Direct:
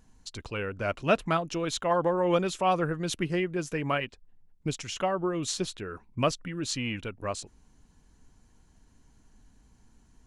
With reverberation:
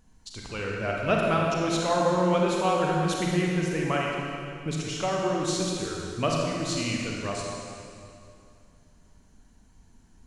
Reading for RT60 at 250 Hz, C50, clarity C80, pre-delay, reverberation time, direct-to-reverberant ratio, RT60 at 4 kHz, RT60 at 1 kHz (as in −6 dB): 2.6 s, −1.0 dB, 0.5 dB, 32 ms, 2.5 s, −2.5 dB, 2.2 s, 2.5 s